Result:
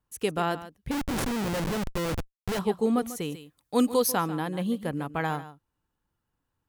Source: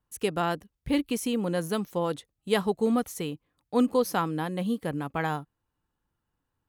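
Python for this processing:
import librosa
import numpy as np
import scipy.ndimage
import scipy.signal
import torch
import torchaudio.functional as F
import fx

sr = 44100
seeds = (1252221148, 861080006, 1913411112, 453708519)

y = x + 10.0 ** (-14.5 / 20.0) * np.pad(x, (int(143 * sr / 1000.0), 0))[:len(x)]
y = fx.schmitt(y, sr, flips_db=-31.5, at=(0.91, 2.59))
y = fx.high_shelf(y, sr, hz=3800.0, db=11.5, at=(3.32, 4.12))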